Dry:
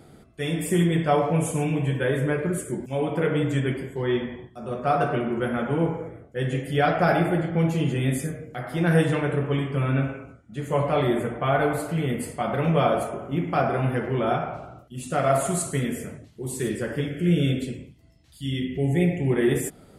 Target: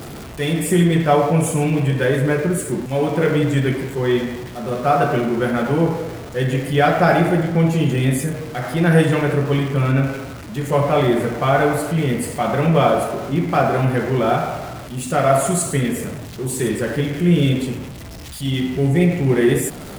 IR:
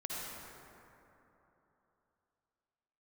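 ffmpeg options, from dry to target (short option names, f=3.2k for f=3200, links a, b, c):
-af "aeval=exprs='val(0)+0.5*0.0178*sgn(val(0))':c=same,volume=5.5dB"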